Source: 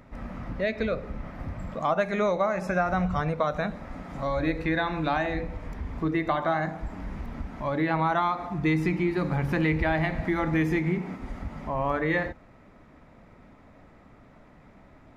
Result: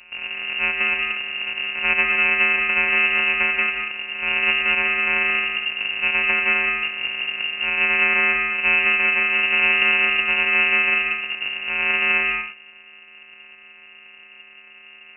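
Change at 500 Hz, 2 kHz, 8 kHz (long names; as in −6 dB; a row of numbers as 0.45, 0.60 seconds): −6.0 dB, +16.5 dB, can't be measured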